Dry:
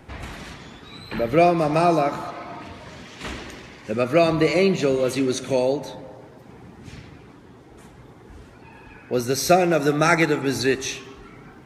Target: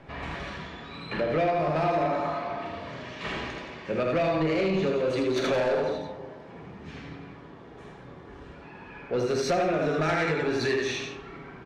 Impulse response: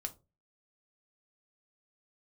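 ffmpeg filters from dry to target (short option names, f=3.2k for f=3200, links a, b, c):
-filter_complex "[0:a]lowpass=3.6k,asettb=1/sr,asplit=3[a][b][c];[a]atrim=end=5.364[d];[b]atrim=start=5.36:end=5.81,asetpts=PTS-STARTPTS,afade=t=in:d=0.004:c=qsin,afade=t=out:st=0.446:d=0.004:c=qsin,asplit=2[e][f];[f]highpass=f=720:p=1,volume=23dB,asoftclip=type=tanh:threshold=-9.5dB[g];[e][g]amix=inputs=2:normalize=0,lowpass=f=1.8k:p=1,volume=-6dB[h];[c]atrim=start=5.806[i];[d][h]acrossfade=d=0.004:c1=hsin:c2=qsin[j];[j][i]acrossfade=d=0.004:c1=qsin:c2=hsin,lowshelf=f=120:g=-7,aecho=1:1:46.65|78.72|172:0.316|0.708|0.355[k];[1:a]atrim=start_sample=2205,asetrate=33516,aresample=44100[l];[k][l]afir=irnorm=-1:irlink=0,acompressor=threshold=-22dB:ratio=2.5,asoftclip=type=tanh:threshold=-19.5dB"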